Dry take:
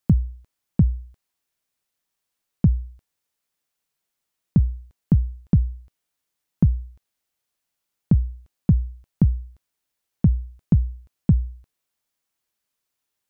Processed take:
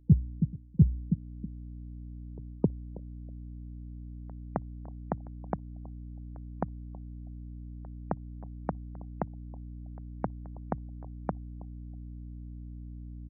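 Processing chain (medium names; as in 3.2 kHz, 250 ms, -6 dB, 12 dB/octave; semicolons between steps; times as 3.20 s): on a send: feedback delay 323 ms, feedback 33%, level -21 dB; on the sum: high-pass sweep 160 Hz -> 760 Hz, 0.93–3.73 s; hum 60 Hz, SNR 19 dB; spectral gate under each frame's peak -30 dB strong; reverse; compression 4:1, threshold -27 dBFS, peak gain reduction 17.5 dB; reverse; pre-echo 264 ms -22.5 dB; trim +6.5 dB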